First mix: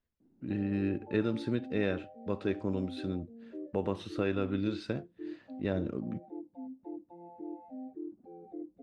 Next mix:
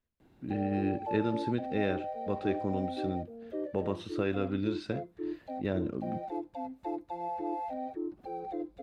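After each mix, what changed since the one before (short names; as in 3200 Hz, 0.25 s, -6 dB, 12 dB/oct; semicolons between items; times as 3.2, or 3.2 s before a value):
background: remove band-pass 240 Hz, Q 2.3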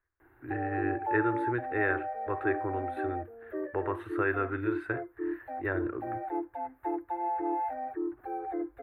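master: add EQ curve 120 Hz 0 dB, 180 Hz -29 dB, 340 Hz +5 dB, 550 Hz -4 dB, 830 Hz +5 dB, 1700 Hz +14 dB, 3000 Hz -10 dB, 5400 Hz -26 dB, 13000 Hz +10 dB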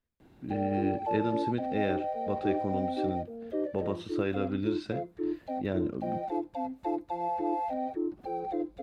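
background +4.5 dB; master: remove EQ curve 120 Hz 0 dB, 180 Hz -29 dB, 340 Hz +5 dB, 550 Hz -4 dB, 830 Hz +5 dB, 1700 Hz +14 dB, 3000 Hz -10 dB, 5400 Hz -26 dB, 13000 Hz +10 dB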